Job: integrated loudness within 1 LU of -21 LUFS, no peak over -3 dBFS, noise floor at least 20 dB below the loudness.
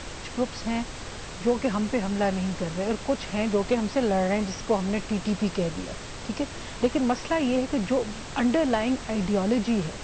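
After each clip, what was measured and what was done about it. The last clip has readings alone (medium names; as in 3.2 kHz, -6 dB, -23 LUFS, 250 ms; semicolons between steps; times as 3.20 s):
noise floor -39 dBFS; noise floor target -47 dBFS; loudness -27.0 LUFS; peak level -11.5 dBFS; loudness target -21.0 LUFS
-> noise print and reduce 8 dB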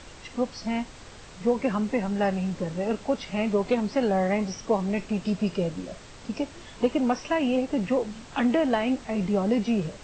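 noise floor -46 dBFS; noise floor target -47 dBFS
-> noise print and reduce 6 dB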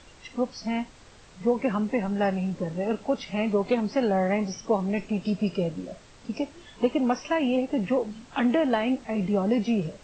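noise floor -52 dBFS; loudness -27.0 LUFS; peak level -11.5 dBFS; loudness target -21.0 LUFS
-> trim +6 dB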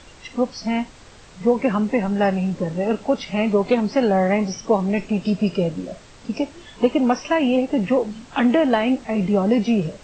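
loudness -21.0 LUFS; peak level -5.5 dBFS; noise floor -46 dBFS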